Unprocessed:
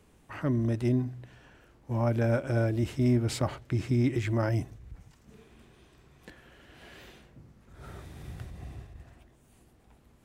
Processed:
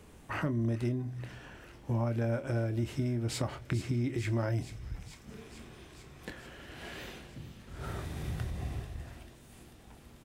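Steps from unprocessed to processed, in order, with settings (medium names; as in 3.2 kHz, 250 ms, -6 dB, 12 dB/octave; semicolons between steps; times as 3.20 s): compression 6:1, threshold -36 dBFS, peak gain reduction 14.5 dB; doubling 26 ms -11.5 dB; feedback echo behind a high-pass 441 ms, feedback 78%, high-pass 2.7 kHz, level -11 dB; trim +6 dB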